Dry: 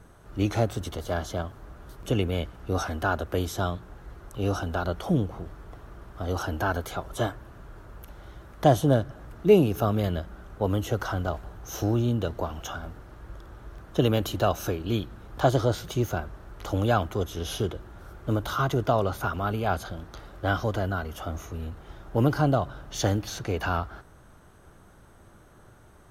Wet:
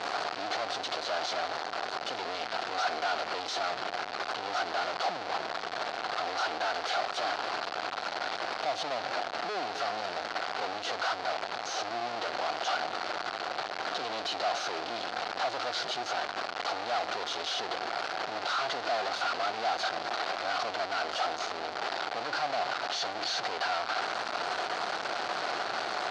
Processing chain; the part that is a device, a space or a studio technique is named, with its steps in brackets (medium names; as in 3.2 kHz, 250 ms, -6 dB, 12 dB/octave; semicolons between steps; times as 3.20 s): home computer beeper (one-bit comparator; cabinet simulation 510–5200 Hz, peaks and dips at 730 Hz +10 dB, 1.4 kHz +4 dB, 4.4 kHz +7 dB); trim -3.5 dB